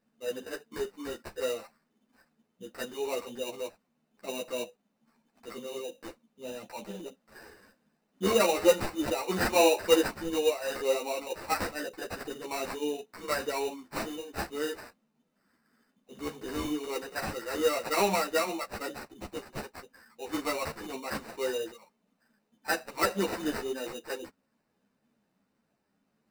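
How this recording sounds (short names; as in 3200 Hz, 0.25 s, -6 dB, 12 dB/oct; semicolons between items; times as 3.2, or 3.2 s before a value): aliases and images of a low sample rate 3300 Hz, jitter 0%; a shimmering, thickened sound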